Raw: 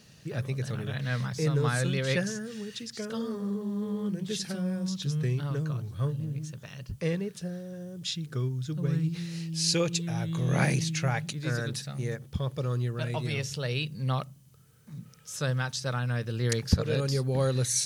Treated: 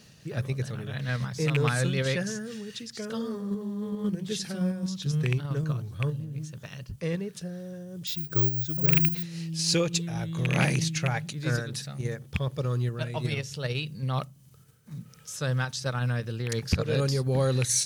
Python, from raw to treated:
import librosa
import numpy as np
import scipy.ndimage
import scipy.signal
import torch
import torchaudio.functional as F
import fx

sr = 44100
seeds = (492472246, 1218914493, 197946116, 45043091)

p1 = fx.rattle_buzz(x, sr, strikes_db=-22.0, level_db=-14.0)
p2 = fx.level_steps(p1, sr, step_db=15)
p3 = p1 + (p2 * librosa.db_to_amplitude(-1.0))
p4 = 10.0 ** (-11.0 / 20.0) * np.tanh(p3 / 10.0 ** (-11.0 / 20.0))
p5 = fx.resample_bad(p4, sr, factor=2, down='filtered', up='zero_stuff', at=(8.07, 9.23))
y = fx.am_noise(p5, sr, seeds[0], hz=5.7, depth_pct=60)